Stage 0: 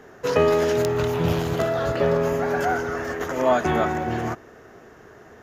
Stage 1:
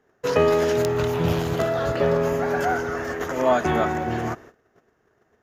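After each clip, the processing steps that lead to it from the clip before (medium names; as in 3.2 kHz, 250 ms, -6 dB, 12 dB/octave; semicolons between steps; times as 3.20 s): gate -43 dBFS, range -19 dB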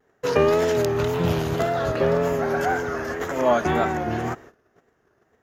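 vibrato 1.9 Hz 70 cents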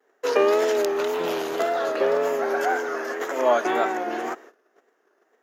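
high-pass 310 Hz 24 dB/octave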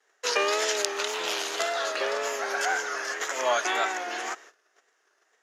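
frequency weighting ITU-R 468; trim -3 dB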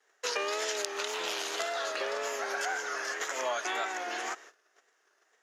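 compression 2.5:1, threshold -30 dBFS, peak gain reduction 7.5 dB; trim -1.5 dB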